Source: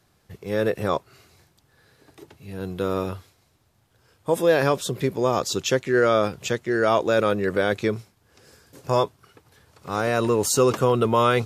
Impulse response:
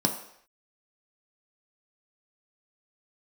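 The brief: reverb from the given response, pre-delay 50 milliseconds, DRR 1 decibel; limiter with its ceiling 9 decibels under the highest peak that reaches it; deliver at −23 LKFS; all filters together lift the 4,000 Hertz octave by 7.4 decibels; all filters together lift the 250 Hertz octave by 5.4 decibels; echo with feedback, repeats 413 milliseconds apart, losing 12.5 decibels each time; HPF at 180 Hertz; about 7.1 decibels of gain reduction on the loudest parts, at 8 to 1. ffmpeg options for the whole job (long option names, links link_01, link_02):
-filter_complex "[0:a]highpass=180,equalizer=frequency=250:width_type=o:gain=8.5,equalizer=frequency=4000:width_type=o:gain=9,acompressor=threshold=-19dB:ratio=8,alimiter=limit=-16.5dB:level=0:latency=1,aecho=1:1:413|826|1239:0.237|0.0569|0.0137,asplit=2[link_01][link_02];[1:a]atrim=start_sample=2205,adelay=50[link_03];[link_02][link_03]afir=irnorm=-1:irlink=0,volume=-11dB[link_04];[link_01][link_04]amix=inputs=2:normalize=0,volume=-0.5dB"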